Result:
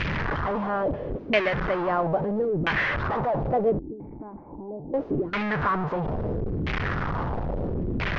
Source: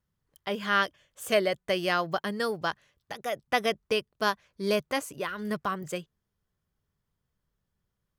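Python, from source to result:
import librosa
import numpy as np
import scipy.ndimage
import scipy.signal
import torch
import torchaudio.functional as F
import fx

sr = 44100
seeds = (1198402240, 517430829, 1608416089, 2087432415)

y = fx.delta_mod(x, sr, bps=32000, step_db=-21.5)
y = fx.filter_lfo_lowpass(y, sr, shape='saw_down', hz=0.75, low_hz=290.0, high_hz=2500.0, q=2.4)
y = fx.formant_cascade(y, sr, vowel='u', at=(3.79, 4.94))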